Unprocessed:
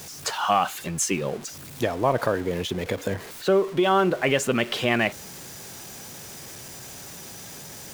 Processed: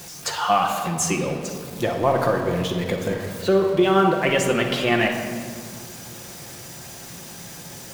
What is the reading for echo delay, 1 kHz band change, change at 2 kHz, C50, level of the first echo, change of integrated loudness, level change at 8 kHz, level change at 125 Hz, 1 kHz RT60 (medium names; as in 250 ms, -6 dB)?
no echo, +2.5 dB, +2.0 dB, 4.5 dB, no echo, +2.5 dB, +1.5 dB, +4.5 dB, 1.9 s